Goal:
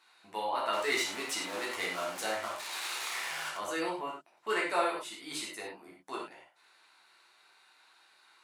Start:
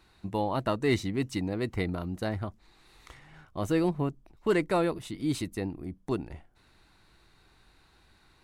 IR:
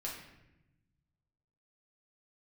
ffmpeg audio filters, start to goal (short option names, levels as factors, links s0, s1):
-filter_complex "[0:a]asettb=1/sr,asplit=3[s0][s1][s2];[s0]atrim=end=0.734[s3];[s1]atrim=start=0.73:end=3.57,asetpts=PTS-STARTPTS,afade=t=in:d=0.004:c=qsin,afade=t=out:st=2.836:d=0.004:c=qsin,aeval=exprs='val(0)+0.5*0.0251*sgn(val(0))':c=same[s4];[s2]atrim=start=3.566[s5];[s3][s4]acrossfade=d=0.004:c1=hsin:c2=qsin[s6];[s6][s5]acrossfade=d=0.004:c1=qsin:c2=hsin,highpass=850[s7];[1:a]atrim=start_sample=2205,atrim=end_sample=3087,asetrate=24696,aresample=44100[s8];[s7][s8]afir=irnorm=-1:irlink=0"